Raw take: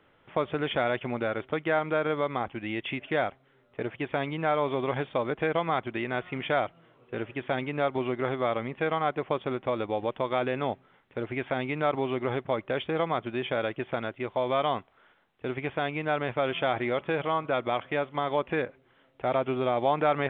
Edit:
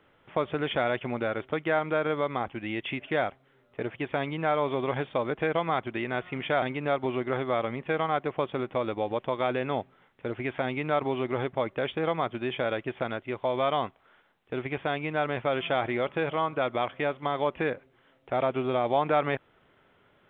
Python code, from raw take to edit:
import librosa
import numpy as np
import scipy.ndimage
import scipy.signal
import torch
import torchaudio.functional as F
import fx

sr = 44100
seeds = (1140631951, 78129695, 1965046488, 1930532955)

y = fx.edit(x, sr, fx.cut(start_s=6.62, length_s=0.92), tone=tone)